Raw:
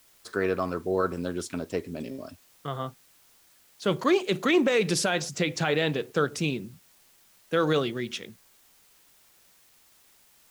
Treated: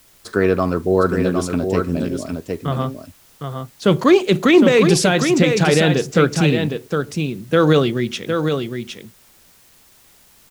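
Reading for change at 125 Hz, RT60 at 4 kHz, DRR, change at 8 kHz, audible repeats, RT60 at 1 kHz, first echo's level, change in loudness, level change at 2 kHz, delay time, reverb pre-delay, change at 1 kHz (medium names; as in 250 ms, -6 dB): +14.5 dB, no reverb, no reverb, +8.5 dB, 1, no reverb, -6.0 dB, +10.5 dB, +8.5 dB, 760 ms, no reverb, +9.0 dB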